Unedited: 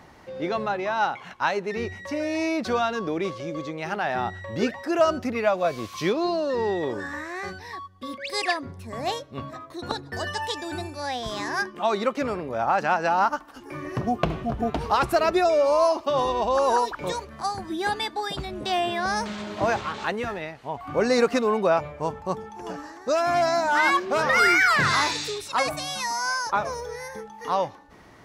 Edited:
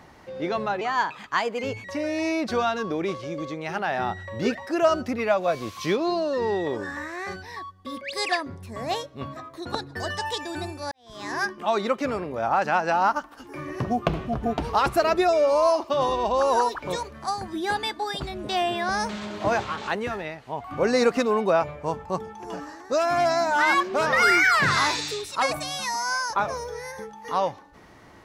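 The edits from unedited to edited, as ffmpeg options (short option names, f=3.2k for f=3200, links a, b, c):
-filter_complex "[0:a]asplit=4[a][b][c][d];[a]atrim=end=0.814[e];[b]atrim=start=0.81:end=2.01,asetpts=PTS-STARTPTS,asetrate=51156,aresample=44100[f];[c]atrim=start=2.006:end=11.08,asetpts=PTS-STARTPTS,afade=t=out:st=9.07:d=0.004:c=hsin[g];[d]atrim=start=11.08,asetpts=PTS-STARTPTS,afade=t=in:d=0.42:c=qua[h];[e][f]acrossfade=d=0.004:c1=hsin:c2=hsin[i];[g][h]concat=n=2:v=0:a=1[j];[i][j]acrossfade=d=0.004:c1=hsin:c2=hsin"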